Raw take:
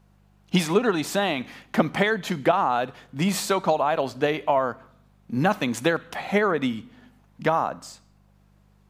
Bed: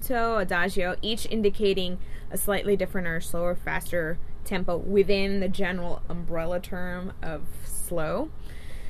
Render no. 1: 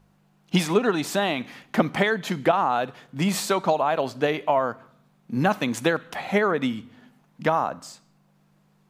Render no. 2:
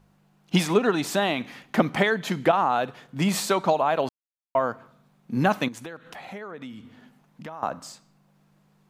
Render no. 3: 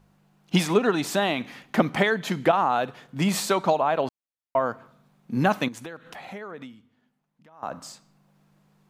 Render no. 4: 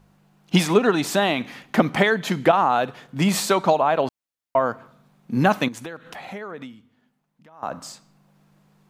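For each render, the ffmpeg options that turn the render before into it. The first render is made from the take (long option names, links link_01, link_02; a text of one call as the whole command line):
ffmpeg -i in.wav -af "bandreject=frequency=50:width_type=h:width=4,bandreject=frequency=100:width_type=h:width=4" out.wav
ffmpeg -i in.wav -filter_complex "[0:a]asettb=1/sr,asplit=3[link_01][link_02][link_03];[link_01]atrim=end=5.684[link_04];[link_02]atrim=start=5.68:end=7.63,asetpts=PTS-STARTPTS,afade=type=in:duration=0.004:curve=qsin,afade=type=out:start_time=1.946:duration=0.004:curve=qsin,acompressor=threshold=-40dB:ratio=3:attack=3.2:release=140:knee=1:detection=peak[link_05];[link_03]atrim=start=7.626[link_06];[link_04][link_05]acrossfade=duration=0.004:curve1=hsin:curve2=qsin[link_07];[link_07][link_06]acrossfade=duration=0.004:curve1=qsin:curve2=hsin,asplit=3[link_08][link_09][link_10];[link_08]atrim=end=4.09,asetpts=PTS-STARTPTS,afade=type=out:start_time=4.086:duration=0.004:curve=hsin[link_11];[link_09]atrim=start=4.09:end=4.55,asetpts=PTS-STARTPTS,volume=0[link_12];[link_10]atrim=start=4.55,asetpts=PTS-STARTPTS,afade=type=in:duration=0.004:curve=hsin[link_13];[link_11][link_12][link_13]concat=n=3:v=0:a=1" out.wav
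ffmpeg -i in.wav -filter_complex "[0:a]asettb=1/sr,asplit=3[link_01][link_02][link_03];[link_01]atrim=end=3.774[link_04];[link_02]atrim=start=3.77:end=4.66,asetpts=PTS-STARTPTS,afade=type=in:duration=0.004:curve=qsin,afade=type=out:start_time=0.886:duration=0.004:curve=qsin,highshelf=frequency=4200:gain=-6[link_05];[link_03]atrim=start=4.656[link_06];[link_04][link_05]acrossfade=duration=0.004:curve1=hsin:curve2=qsin[link_07];[link_07][link_06]acrossfade=duration=0.004:curve1=qsin:curve2=hsin,asplit=3[link_08][link_09][link_10];[link_08]atrim=end=6.91,asetpts=PTS-STARTPTS,afade=type=out:start_time=6.61:duration=0.3:curve=qua:silence=0.141254[link_11];[link_09]atrim=start=6.91:end=7.45,asetpts=PTS-STARTPTS,volume=-17dB[link_12];[link_10]atrim=start=7.45,asetpts=PTS-STARTPTS,afade=type=in:duration=0.3:curve=qua:silence=0.141254[link_13];[link_11][link_12][link_13]concat=n=3:v=0:a=1" out.wav
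ffmpeg -i in.wav -af "volume=3.5dB,alimiter=limit=-2dB:level=0:latency=1" out.wav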